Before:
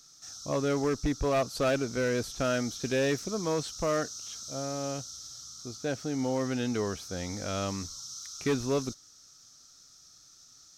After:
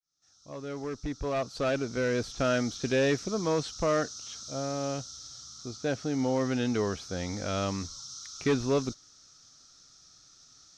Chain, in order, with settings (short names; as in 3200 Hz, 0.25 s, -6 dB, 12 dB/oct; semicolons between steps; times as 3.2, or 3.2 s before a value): opening faded in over 2.53 s; LPF 5700 Hz 12 dB/oct; gain +2 dB